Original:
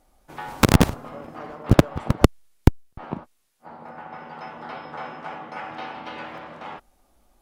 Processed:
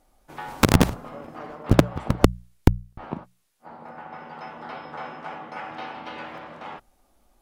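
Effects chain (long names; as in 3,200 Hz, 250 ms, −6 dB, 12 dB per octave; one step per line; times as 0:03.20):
mains-hum notches 60/120/180 Hz
level −1 dB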